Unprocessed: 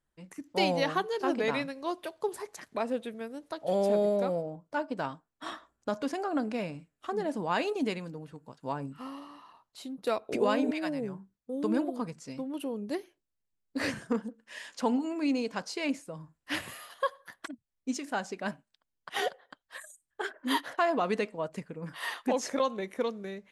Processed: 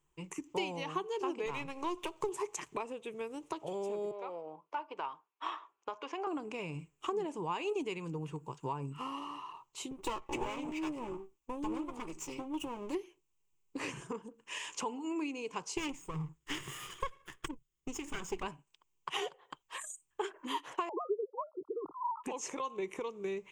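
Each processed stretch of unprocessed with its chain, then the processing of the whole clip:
1.46–2.29 half-wave gain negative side -7 dB + three-band squash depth 70%
4.11–6.27 HPF 640 Hz + air absorption 210 m
9.91–12.95 minimum comb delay 3.5 ms + doubler 13 ms -11.5 dB
15.77–18.43 minimum comb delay 0.58 ms + tone controls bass +3 dB, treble -1 dB
20.89–22.24 sine-wave speech + brick-wall FIR low-pass 1400 Hz
whole clip: low shelf 140 Hz -4 dB; compressor 6:1, threshold -40 dBFS; ripple EQ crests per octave 0.71, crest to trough 13 dB; gain +3.5 dB

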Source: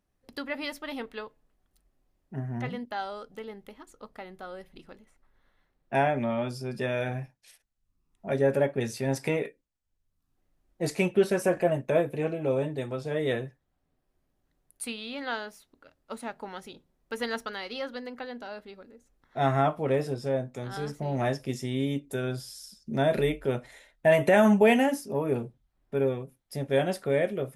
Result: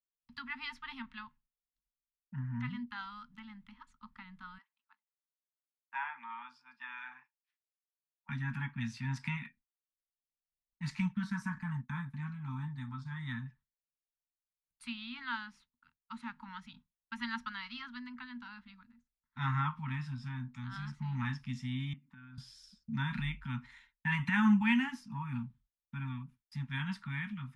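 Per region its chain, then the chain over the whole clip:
4.58–8.29 HPF 700 Hz 24 dB/oct + tilt -4.5 dB/oct
11–13.46 bell 2700 Hz -14.5 dB 0.48 oct + expander -39 dBFS
21.93–22.38 Chebyshev band-pass 160–2000 Hz + compressor, threshold -42 dBFS
whole clip: Chebyshev band-stop 250–900 Hz, order 5; expander -52 dBFS; LPF 3700 Hz 12 dB/oct; gain -3 dB

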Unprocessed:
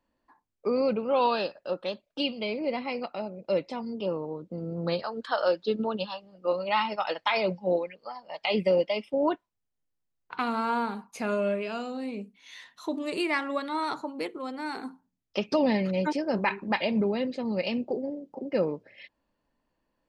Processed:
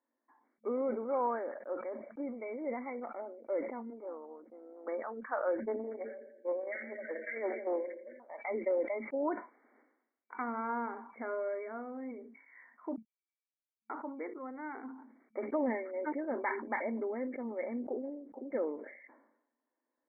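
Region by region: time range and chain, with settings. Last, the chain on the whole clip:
3.9–4.88 weighting filter A + AM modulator 230 Hz, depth 25%
5.6–8.2 brick-wall FIR band-stop 650–1500 Hz + multi-head echo 84 ms, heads first and second, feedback 47%, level -16.5 dB + Doppler distortion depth 0.46 ms
12.96–13.9 brick-wall FIR high-pass 2500 Hz + tilt -4.5 dB/oct
whole clip: FFT band-pass 220–2300 Hz; sustainer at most 69 dB/s; gain -8 dB

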